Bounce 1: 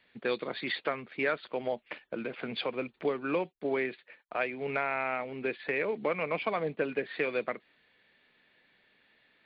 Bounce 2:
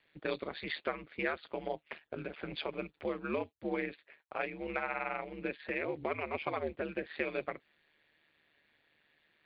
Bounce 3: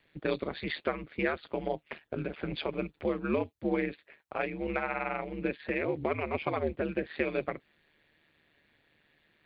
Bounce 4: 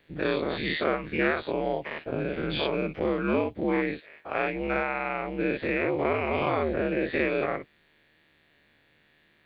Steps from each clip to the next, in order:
ring modulator 76 Hz; gain -2 dB
low shelf 350 Hz +8.5 dB; gain +2 dB
spectral dilation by 0.12 s

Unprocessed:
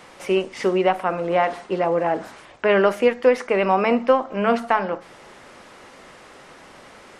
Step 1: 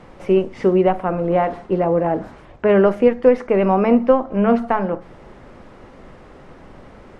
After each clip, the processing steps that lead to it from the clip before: tilt -4 dB/oct; gain -1 dB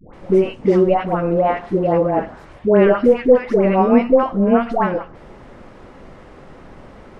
dispersion highs, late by 0.138 s, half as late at 820 Hz; gain +1.5 dB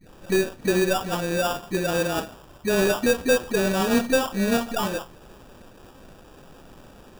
CVSD 16 kbps; sample-rate reducer 2100 Hz, jitter 0%; gain -6.5 dB

